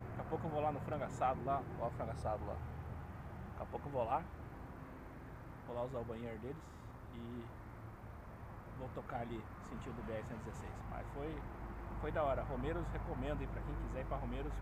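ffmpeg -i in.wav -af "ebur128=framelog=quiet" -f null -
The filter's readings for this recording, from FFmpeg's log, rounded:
Integrated loudness:
  I:         -43.9 LUFS
  Threshold: -53.9 LUFS
Loudness range:
  LRA:         7.1 LU
  Threshold: -64.8 LUFS
  LRA low:   -48.9 LUFS
  LRA high:  -41.7 LUFS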